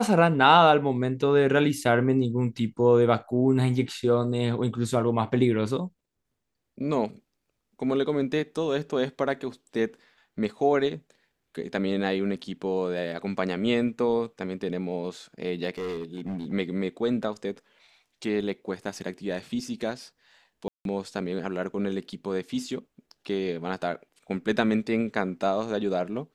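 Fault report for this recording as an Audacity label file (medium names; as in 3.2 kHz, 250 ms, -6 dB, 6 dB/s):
15.780000	16.530000	clipped -28.5 dBFS
20.680000	20.850000	dropout 172 ms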